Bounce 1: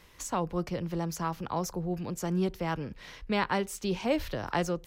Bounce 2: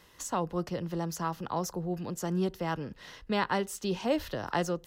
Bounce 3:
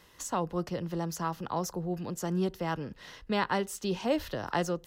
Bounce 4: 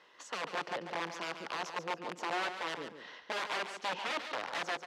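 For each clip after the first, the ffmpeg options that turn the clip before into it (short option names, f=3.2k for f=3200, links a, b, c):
-af "lowshelf=f=65:g=-11,bandreject=f=2.3k:w=6.4"
-af anull
-filter_complex "[0:a]aeval=exprs='(mod(22.4*val(0)+1,2)-1)/22.4':c=same,highpass=440,lowpass=3.4k,asplit=2[a][b];[b]aecho=0:1:142|284|426:0.355|0.0781|0.0172[c];[a][c]amix=inputs=2:normalize=0"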